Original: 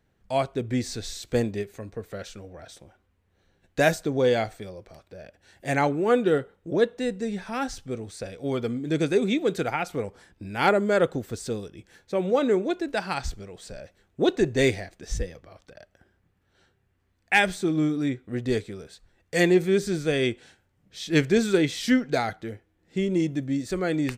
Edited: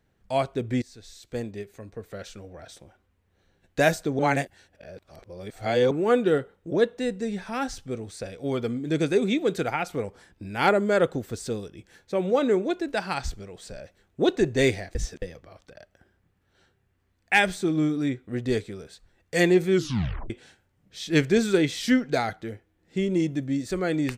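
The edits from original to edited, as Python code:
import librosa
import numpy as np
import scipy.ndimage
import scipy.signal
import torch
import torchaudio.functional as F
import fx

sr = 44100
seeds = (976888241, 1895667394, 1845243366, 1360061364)

y = fx.edit(x, sr, fx.fade_in_from(start_s=0.82, length_s=1.72, floor_db=-18.0),
    fx.reverse_span(start_s=4.19, length_s=1.72),
    fx.reverse_span(start_s=14.95, length_s=0.27),
    fx.tape_stop(start_s=19.72, length_s=0.58), tone=tone)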